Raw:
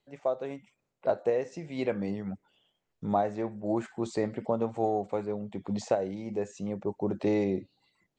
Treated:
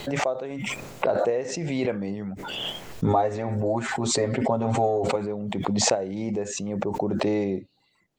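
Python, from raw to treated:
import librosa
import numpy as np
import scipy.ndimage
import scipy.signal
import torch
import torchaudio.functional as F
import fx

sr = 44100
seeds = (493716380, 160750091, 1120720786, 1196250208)

y = fx.comb(x, sr, ms=7.5, depth=0.96, at=(3.06, 5.16))
y = fx.pre_swell(y, sr, db_per_s=23.0)
y = F.gain(torch.from_numpy(y), 2.0).numpy()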